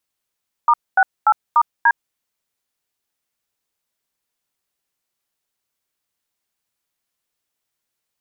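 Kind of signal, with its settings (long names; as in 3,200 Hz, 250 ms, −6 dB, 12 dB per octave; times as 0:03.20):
touch tones "*68*D", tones 57 ms, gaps 236 ms, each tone −12 dBFS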